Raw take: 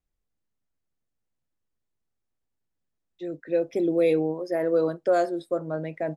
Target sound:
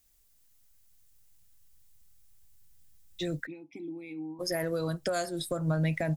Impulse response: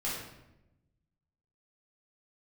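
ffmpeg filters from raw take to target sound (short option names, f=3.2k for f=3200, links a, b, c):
-filter_complex "[0:a]crystalizer=i=7:c=0,acompressor=threshold=-34dB:ratio=4,asplit=3[a][b][c];[a]afade=t=out:st=3.45:d=0.02[d];[b]asplit=3[e][f][g];[e]bandpass=f=300:t=q:w=8,volume=0dB[h];[f]bandpass=f=870:t=q:w=8,volume=-6dB[i];[g]bandpass=f=2.24k:t=q:w=8,volume=-9dB[j];[h][i][j]amix=inputs=3:normalize=0,afade=t=in:st=3.45:d=0.02,afade=t=out:st=4.39:d=0.02[k];[c]afade=t=in:st=4.39:d=0.02[l];[d][k][l]amix=inputs=3:normalize=0,asubboost=boost=11.5:cutoff=120,volume=6dB"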